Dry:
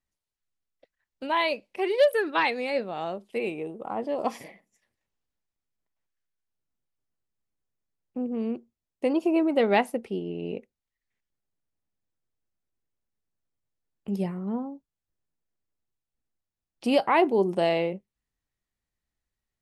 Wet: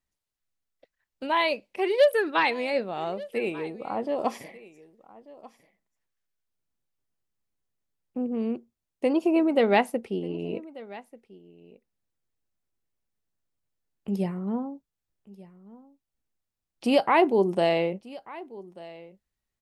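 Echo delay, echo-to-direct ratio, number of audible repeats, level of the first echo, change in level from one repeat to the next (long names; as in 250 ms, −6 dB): 1,189 ms, −20.0 dB, 1, −20.0 dB, repeats not evenly spaced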